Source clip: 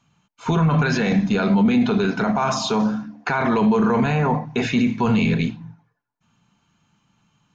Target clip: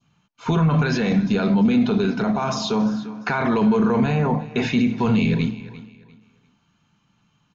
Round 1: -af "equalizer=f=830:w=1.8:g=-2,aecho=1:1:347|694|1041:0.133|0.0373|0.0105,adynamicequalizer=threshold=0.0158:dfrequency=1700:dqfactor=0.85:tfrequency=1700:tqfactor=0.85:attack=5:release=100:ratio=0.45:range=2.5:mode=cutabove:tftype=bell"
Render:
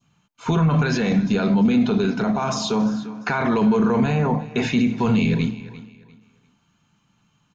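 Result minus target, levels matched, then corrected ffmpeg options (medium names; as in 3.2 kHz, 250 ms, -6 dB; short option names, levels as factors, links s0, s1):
8 kHz band +3.0 dB
-af "lowpass=f=6400:w=0.5412,lowpass=f=6400:w=1.3066,equalizer=f=830:w=1.8:g=-2,aecho=1:1:347|694|1041:0.133|0.0373|0.0105,adynamicequalizer=threshold=0.0158:dfrequency=1700:dqfactor=0.85:tfrequency=1700:tqfactor=0.85:attack=5:release=100:ratio=0.45:range=2.5:mode=cutabove:tftype=bell"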